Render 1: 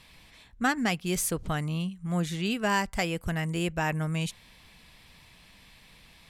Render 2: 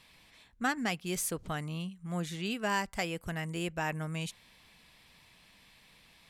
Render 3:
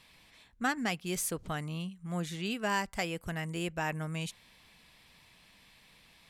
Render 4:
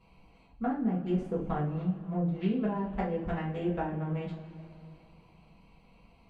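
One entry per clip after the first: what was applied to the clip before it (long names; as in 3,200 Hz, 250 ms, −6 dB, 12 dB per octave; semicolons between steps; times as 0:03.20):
low-shelf EQ 120 Hz −8 dB; level −4.5 dB
no processing that can be heard
adaptive Wiener filter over 25 samples; treble cut that deepens with the level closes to 390 Hz, closed at −29.5 dBFS; coupled-rooms reverb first 0.33 s, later 2.7 s, from −18 dB, DRR −7 dB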